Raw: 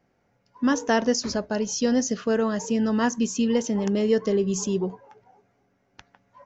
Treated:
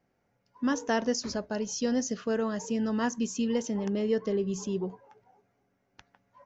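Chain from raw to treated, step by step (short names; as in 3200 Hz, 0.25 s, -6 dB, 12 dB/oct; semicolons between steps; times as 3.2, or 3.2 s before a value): 3.77–4.89 air absorption 74 m; gain -6 dB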